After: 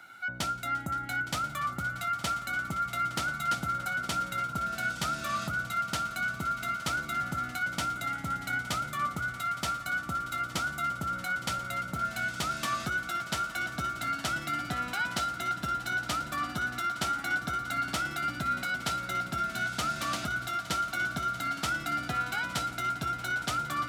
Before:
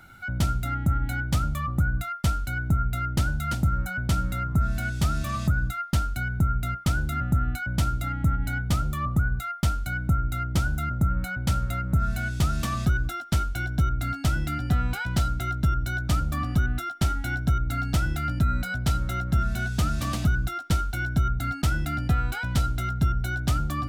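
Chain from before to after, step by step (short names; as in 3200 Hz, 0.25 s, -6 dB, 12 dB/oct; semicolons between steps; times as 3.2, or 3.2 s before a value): weighting filter A; on a send: swelling echo 0.173 s, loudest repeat 5, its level -17.5 dB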